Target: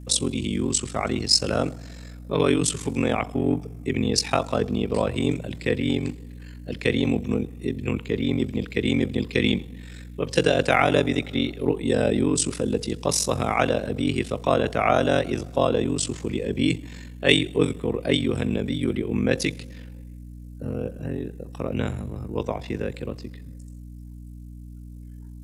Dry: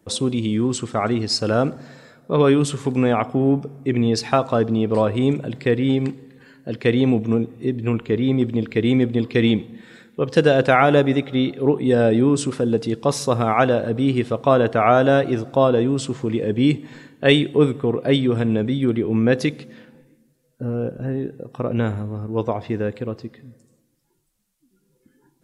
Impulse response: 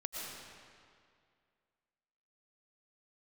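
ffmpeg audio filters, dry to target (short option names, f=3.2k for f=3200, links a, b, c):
-filter_complex "[0:a]aeval=exprs='val(0)*sin(2*PI*23*n/s)':c=same,acrossover=split=100|980|1400[a][b][c][d];[d]aexciter=amount=2.9:drive=3.1:freq=2k[e];[a][b][c][e]amix=inputs=4:normalize=0,aeval=exprs='val(0)+0.0158*(sin(2*PI*60*n/s)+sin(2*PI*2*60*n/s)/2+sin(2*PI*3*60*n/s)/3+sin(2*PI*4*60*n/s)/4+sin(2*PI*5*60*n/s)/5)':c=same,volume=-2.5dB"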